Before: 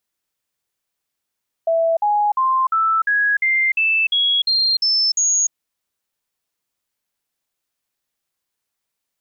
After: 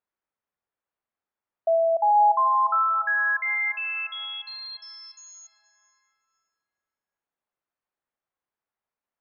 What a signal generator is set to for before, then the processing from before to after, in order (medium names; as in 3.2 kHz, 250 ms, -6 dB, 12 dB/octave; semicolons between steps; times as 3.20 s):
stepped sine 660 Hz up, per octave 3, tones 11, 0.30 s, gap 0.05 s -14 dBFS
low-pass 1.3 kHz 12 dB/octave; bass shelf 470 Hz -9 dB; plate-style reverb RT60 4 s, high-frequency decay 0.55×, DRR 12 dB